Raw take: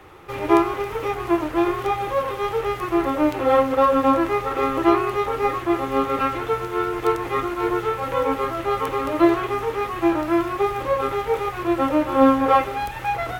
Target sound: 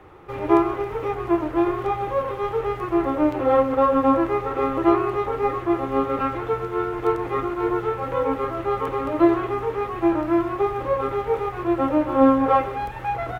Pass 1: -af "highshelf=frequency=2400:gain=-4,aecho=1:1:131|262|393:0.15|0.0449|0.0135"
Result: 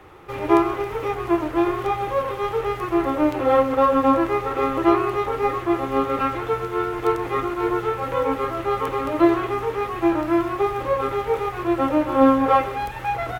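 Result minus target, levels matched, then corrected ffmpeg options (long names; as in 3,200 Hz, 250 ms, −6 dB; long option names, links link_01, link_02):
4,000 Hz band +5.0 dB
-af "highshelf=frequency=2400:gain=-13,aecho=1:1:131|262|393:0.15|0.0449|0.0135"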